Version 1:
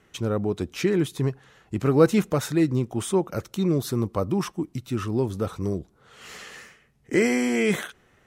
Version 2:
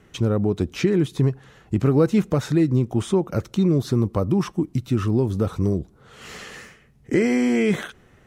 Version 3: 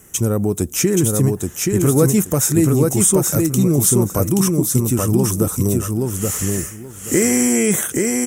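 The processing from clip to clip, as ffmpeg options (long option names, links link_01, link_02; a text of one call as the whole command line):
ffmpeg -i in.wav -filter_complex "[0:a]acompressor=threshold=-26dB:ratio=2,lowshelf=frequency=400:gain=7.5,acrossover=split=7100[link_01][link_02];[link_02]acompressor=threshold=-52dB:ratio=4:attack=1:release=60[link_03];[link_01][link_03]amix=inputs=2:normalize=0,volume=2.5dB" out.wav
ffmpeg -i in.wav -af "aecho=1:1:827|1654|2481:0.708|0.135|0.0256,aexciter=amount=9.9:drive=9.1:freq=6400,volume=2.5dB" out.wav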